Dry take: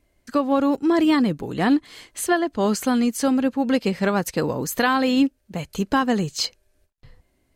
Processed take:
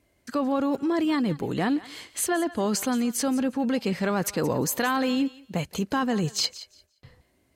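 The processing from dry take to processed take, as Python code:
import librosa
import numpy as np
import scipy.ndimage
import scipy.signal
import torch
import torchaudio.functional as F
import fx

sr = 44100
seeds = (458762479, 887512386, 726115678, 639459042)

p1 = scipy.signal.sosfilt(scipy.signal.butter(2, 71.0, 'highpass', fs=sr, output='sos'), x)
p2 = fx.over_compress(p1, sr, threshold_db=-25.0, ratio=-1.0)
p3 = p1 + (p2 * librosa.db_to_amplitude(2.0))
p4 = fx.echo_thinned(p3, sr, ms=174, feedback_pct=19, hz=890.0, wet_db=-15.5)
y = p4 * librosa.db_to_amplitude(-9.0)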